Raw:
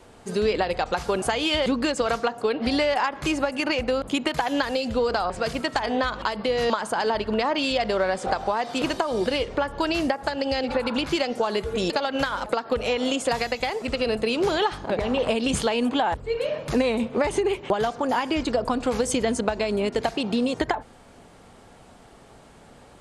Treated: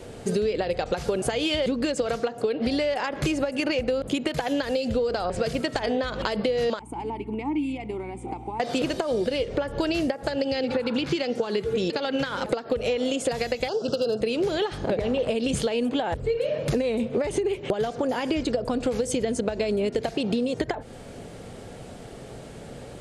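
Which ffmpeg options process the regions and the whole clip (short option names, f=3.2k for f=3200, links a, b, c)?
-filter_complex "[0:a]asettb=1/sr,asplit=3[a][b][c];[a]atrim=end=6.794[d];[b]atrim=start=6.79:end=8.6,asetpts=PTS-STARTPTS,afade=t=in:d=0.004:c=qsin,afade=t=out:st=1.806:d=0.004:c=qsin,asplit=3[e][f][g];[e]bandpass=f=300:t=q:w=8,volume=0dB[h];[f]bandpass=f=870:t=q:w=8,volume=-6dB[i];[g]bandpass=f=2.24k:t=q:w=8,volume=-9dB[j];[h][i][j]amix=inputs=3:normalize=0,highshelf=f=6.8k:t=q:w=3:g=14,aeval=exprs='val(0)+0.00282*(sin(2*PI*60*n/s)+sin(2*PI*2*60*n/s)/2+sin(2*PI*3*60*n/s)/3+sin(2*PI*4*60*n/s)/4+sin(2*PI*5*60*n/s)/5)':c=same[k];[c]atrim=start=8.596[l];[d][k]acrossfade=d=0.004:c1=hsin:c2=qsin[m];[m][l]acrossfade=d=0.004:c1=qsin:c2=hsin,asettb=1/sr,asplit=3[n][o][p];[n]atrim=end=10.454[q];[o]atrim=start=10.45:end=12.52,asetpts=PTS-STARTPTS,afade=t=in:d=0.004:c=qsin,afade=t=out:st=2.066:d=0.004:c=qsin,acrossover=split=6900[r][s];[s]acompressor=threshold=-59dB:ratio=4:attack=1:release=60[t];[r][t]amix=inputs=2:normalize=0,highpass=99,equalizer=f=620:w=4.3:g=-7.5[u];[p]atrim=start=12.516[v];[q][u]acrossfade=d=0.004:c1=hsin:c2=qsin[w];[w][v]acrossfade=d=0.004:c1=qsin:c2=hsin,asettb=1/sr,asplit=3[x][y][z];[x]atrim=end=13.684[aa];[y]atrim=start=13.68:end=14.21,asetpts=PTS-STARTPTS,afade=t=in:d=0.004:c=qsin,afade=t=out:st=0.526:d=0.004:c=qsin,highpass=f=130:w=0.5412,highpass=f=130:w=1.3066,equalizer=f=250:t=q:w=4:g=-4,equalizer=f=1.5k:t=q:w=4:g=5,equalizer=f=3.1k:t=q:w=4:g=-3,equalizer=f=5.3k:t=q:w=4:g=8,lowpass=f=6.7k:w=0.5412,lowpass=f=6.7k:w=1.3066,asoftclip=type=hard:threshold=-17.5dB,asuperstop=centerf=2100:order=8:qfactor=1.6[ab];[z]atrim=start=14.206[ac];[aa][ab]acrossfade=d=0.004:c1=hsin:c2=qsin[ad];[ad][ac]acrossfade=d=0.004:c1=qsin:c2=hsin,equalizer=f=125:t=o:w=1:g=6,equalizer=f=500:t=o:w=1:g=6,equalizer=f=1k:t=o:w=1:g=-8,acompressor=threshold=-30dB:ratio=6,volume=7dB"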